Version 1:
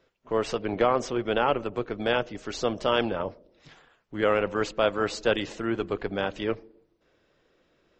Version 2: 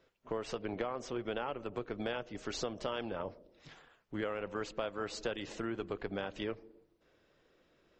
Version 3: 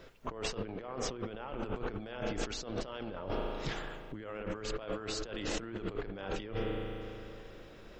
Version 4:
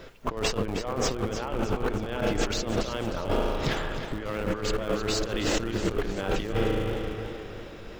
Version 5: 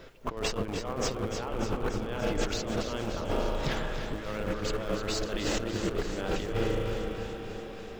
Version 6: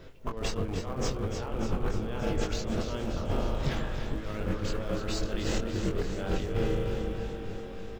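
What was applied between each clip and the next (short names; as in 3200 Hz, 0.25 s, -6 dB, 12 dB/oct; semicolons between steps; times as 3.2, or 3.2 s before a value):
compressor 6:1, threshold -31 dBFS, peak gain reduction 13 dB; gain -3 dB
low shelf 74 Hz +11.5 dB; spring tank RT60 2.9 s, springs 37 ms, chirp 65 ms, DRR 11 dB; negative-ratio compressor -47 dBFS, ratio -1; gain +7.5 dB
in parallel at -8 dB: Schmitt trigger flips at -36.5 dBFS; on the sum: warbling echo 0.311 s, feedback 48%, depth 100 cents, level -10 dB; gain +8.5 dB
echo with dull and thin repeats by turns 0.146 s, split 810 Hz, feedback 87%, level -10 dB; gain -4 dB
low shelf 210 Hz +9.5 dB; doubler 22 ms -5 dB; gain -4.5 dB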